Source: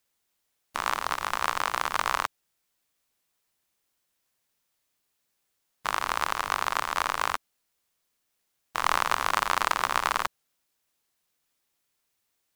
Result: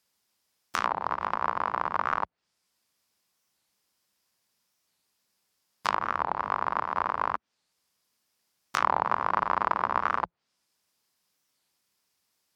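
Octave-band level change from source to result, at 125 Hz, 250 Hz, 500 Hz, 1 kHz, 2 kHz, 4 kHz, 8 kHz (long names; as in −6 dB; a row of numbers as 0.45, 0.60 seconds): +1.5 dB, +3.0 dB, +1.5 dB, +0.5 dB, −4.5 dB, −10.5 dB, below −10 dB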